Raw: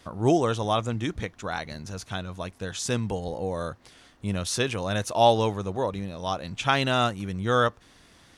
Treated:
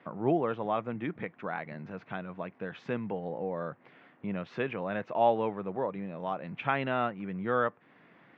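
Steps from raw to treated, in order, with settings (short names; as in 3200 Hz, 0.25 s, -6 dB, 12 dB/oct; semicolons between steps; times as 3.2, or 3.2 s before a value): elliptic band-pass 150–2300 Hz, stop band 60 dB; in parallel at 0 dB: compressor, threshold -36 dBFS, peak gain reduction 20.5 dB; on the sum: gain -6.5 dB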